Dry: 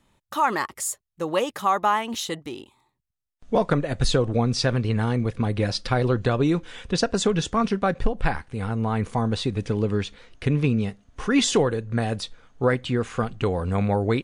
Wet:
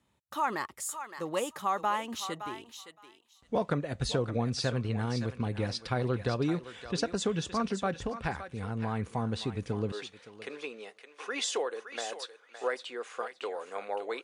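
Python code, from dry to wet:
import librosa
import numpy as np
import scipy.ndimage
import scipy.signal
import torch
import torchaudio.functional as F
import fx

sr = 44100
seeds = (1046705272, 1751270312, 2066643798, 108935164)

y = fx.highpass(x, sr, hz=fx.steps((0.0, 50.0), (9.92, 430.0)), slope=24)
y = fx.echo_thinned(y, sr, ms=566, feedback_pct=16, hz=880.0, wet_db=-8)
y = y * 10.0 ** (-8.5 / 20.0)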